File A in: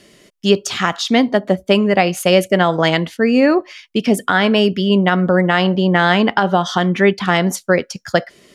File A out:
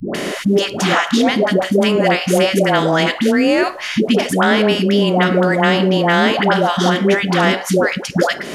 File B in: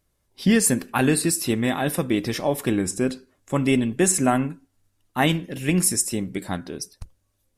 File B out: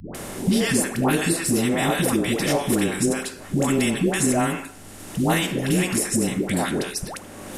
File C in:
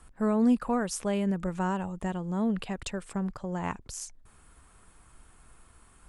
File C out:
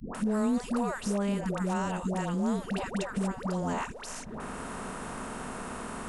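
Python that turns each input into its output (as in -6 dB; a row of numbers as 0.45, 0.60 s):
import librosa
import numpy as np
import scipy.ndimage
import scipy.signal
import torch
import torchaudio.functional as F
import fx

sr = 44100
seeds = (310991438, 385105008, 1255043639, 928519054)

y = fx.bin_compress(x, sr, power=0.6)
y = fx.dispersion(y, sr, late='highs', ms=148.0, hz=560.0)
y = fx.band_squash(y, sr, depth_pct=70)
y = F.gain(torch.from_numpy(y), -3.0).numpy()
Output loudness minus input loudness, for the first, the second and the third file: +0.5, 0.0, -2.0 LU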